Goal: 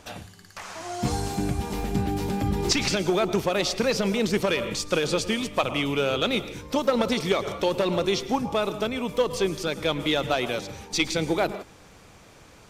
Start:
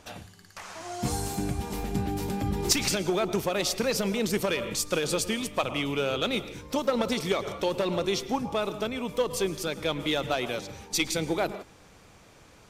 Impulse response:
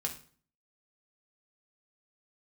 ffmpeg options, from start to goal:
-filter_complex "[0:a]acrossover=split=6300[a][b];[b]acompressor=threshold=-48dB:ratio=4:attack=1:release=60[c];[a][c]amix=inputs=2:normalize=0,volume=3.5dB"

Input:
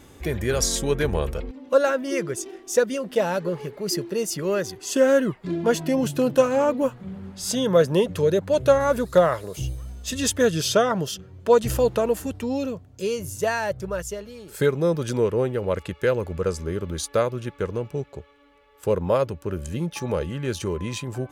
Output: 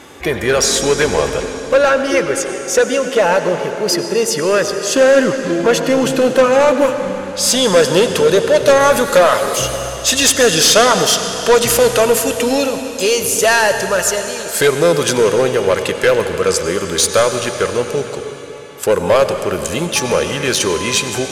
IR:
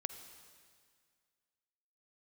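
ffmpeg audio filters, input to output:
-filter_complex "[0:a]asetnsamples=n=441:p=0,asendcmd='6.53 highshelf g 4;8.68 highshelf g 9',highshelf=f=3.1k:g=-4,asplit=2[a][b];[b]highpass=f=720:p=1,volume=23dB,asoftclip=type=tanh:threshold=-1dB[c];[a][c]amix=inputs=2:normalize=0,lowpass=f=7k:p=1,volume=-6dB[d];[1:a]atrim=start_sample=2205,asetrate=24696,aresample=44100[e];[d][e]afir=irnorm=-1:irlink=0,volume=-2dB"

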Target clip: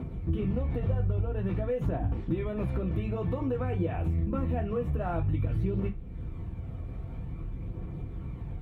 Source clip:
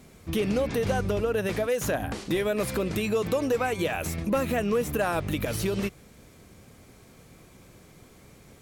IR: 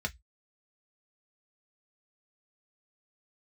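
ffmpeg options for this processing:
-filter_complex "[0:a]bass=f=250:g=12,treble=f=4k:g=-13,asplit=2[a][b];[1:a]atrim=start_sample=2205,asetrate=22491,aresample=44100[c];[b][c]afir=irnorm=-1:irlink=0,volume=-1dB[d];[a][d]amix=inputs=2:normalize=0,aphaser=in_gain=1:out_gain=1:delay=1.8:decay=0.3:speed=0.51:type=triangular,acompressor=threshold=-37dB:ratio=2.5"

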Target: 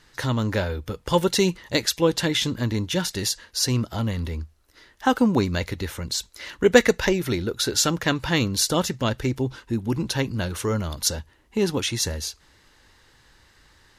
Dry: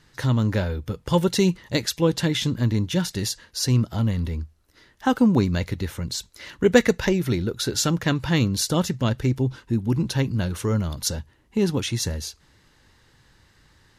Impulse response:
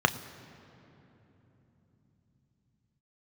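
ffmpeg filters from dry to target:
-af "equalizer=f=140:t=o:w=1.9:g=-8,volume=3dB"

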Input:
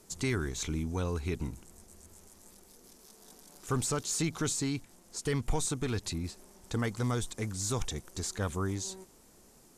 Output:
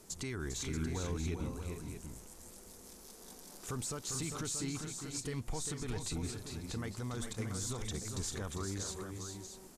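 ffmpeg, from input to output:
-filter_complex "[0:a]alimiter=level_in=7.5dB:limit=-24dB:level=0:latency=1:release=169,volume=-7.5dB,asplit=2[a][b];[b]aecho=0:1:400|438|632:0.473|0.335|0.376[c];[a][c]amix=inputs=2:normalize=0,volume=1dB"

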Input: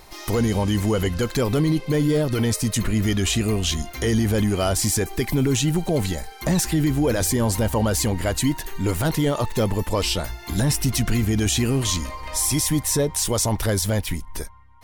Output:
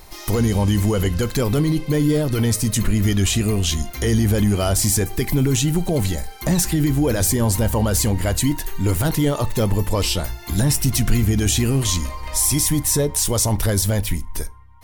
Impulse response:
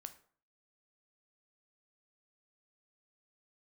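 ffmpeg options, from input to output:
-filter_complex "[0:a]highshelf=f=7.9k:g=7,asplit=2[a][b];[1:a]atrim=start_sample=2205,asetrate=61740,aresample=44100,lowshelf=f=210:g=10.5[c];[b][c]afir=irnorm=-1:irlink=0,volume=4dB[d];[a][d]amix=inputs=2:normalize=0,volume=-4dB"

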